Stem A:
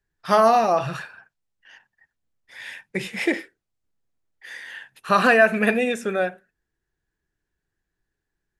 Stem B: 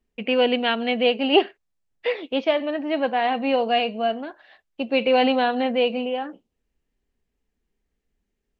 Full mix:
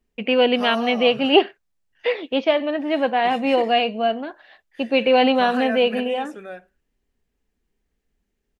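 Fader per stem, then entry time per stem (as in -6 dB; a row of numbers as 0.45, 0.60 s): -13.0, +2.5 dB; 0.30, 0.00 s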